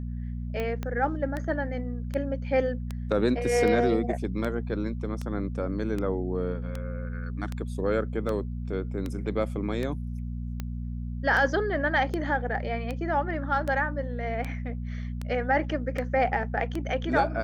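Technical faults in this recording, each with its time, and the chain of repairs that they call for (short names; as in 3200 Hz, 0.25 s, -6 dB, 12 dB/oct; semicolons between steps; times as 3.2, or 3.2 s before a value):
hum 60 Hz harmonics 4 -33 dBFS
tick 78 rpm -19 dBFS
0.83 pop -19 dBFS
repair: de-click; de-hum 60 Hz, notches 4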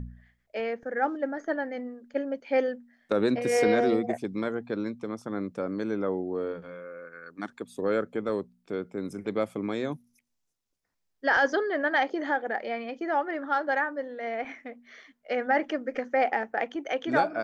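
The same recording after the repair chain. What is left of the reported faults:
0.83 pop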